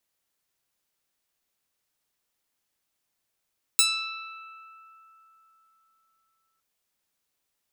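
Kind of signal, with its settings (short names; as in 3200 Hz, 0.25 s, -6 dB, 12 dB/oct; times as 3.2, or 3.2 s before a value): plucked string E6, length 2.81 s, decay 3.99 s, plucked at 0.08, bright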